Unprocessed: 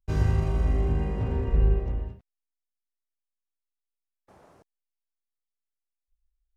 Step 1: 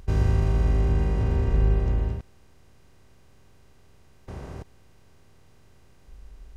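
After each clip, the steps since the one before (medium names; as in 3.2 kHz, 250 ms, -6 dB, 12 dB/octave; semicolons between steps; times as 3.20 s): spectral levelling over time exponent 0.4; trim -1.5 dB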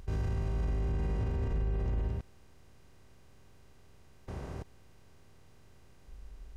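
peak limiter -22.5 dBFS, peak gain reduction 10.5 dB; trim -3 dB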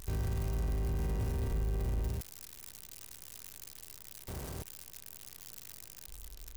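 zero-crossing glitches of -31.5 dBFS; trim -1.5 dB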